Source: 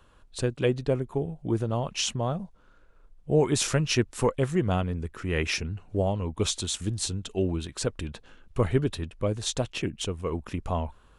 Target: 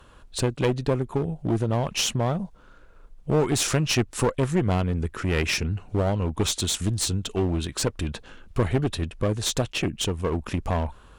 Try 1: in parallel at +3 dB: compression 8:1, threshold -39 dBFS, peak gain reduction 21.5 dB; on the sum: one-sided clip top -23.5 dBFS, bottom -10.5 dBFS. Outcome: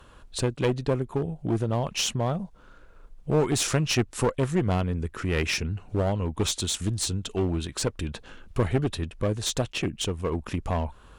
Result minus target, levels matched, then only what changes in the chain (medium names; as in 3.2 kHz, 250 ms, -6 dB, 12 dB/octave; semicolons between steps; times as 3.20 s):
compression: peak gain reduction +8 dB
change: compression 8:1, threshold -30 dBFS, peak gain reduction 13.5 dB